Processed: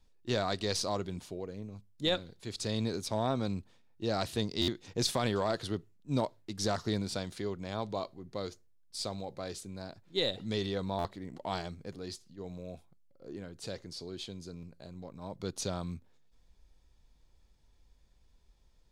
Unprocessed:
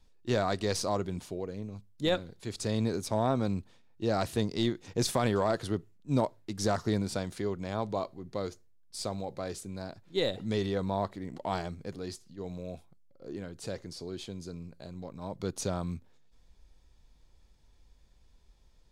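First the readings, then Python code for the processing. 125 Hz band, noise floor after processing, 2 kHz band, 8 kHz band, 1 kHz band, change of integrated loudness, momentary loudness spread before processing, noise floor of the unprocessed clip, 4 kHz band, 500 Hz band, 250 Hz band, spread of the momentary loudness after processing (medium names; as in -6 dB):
-3.5 dB, -65 dBFS, -2.0 dB, -1.0 dB, -3.0 dB, -2.5 dB, 13 LU, -61 dBFS, +3.0 dB, -3.5 dB, -3.5 dB, 14 LU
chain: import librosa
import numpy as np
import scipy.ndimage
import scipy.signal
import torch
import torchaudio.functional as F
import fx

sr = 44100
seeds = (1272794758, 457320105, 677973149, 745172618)

y = fx.dynamic_eq(x, sr, hz=3900.0, q=1.1, threshold_db=-54.0, ratio=4.0, max_db=7)
y = fx.buffer_glitch(y, sr, at_s=(4.61, 10.98, 14.56), block=512, repeats=5)
y = y * 10.0 ** (-3.5 / 20.0)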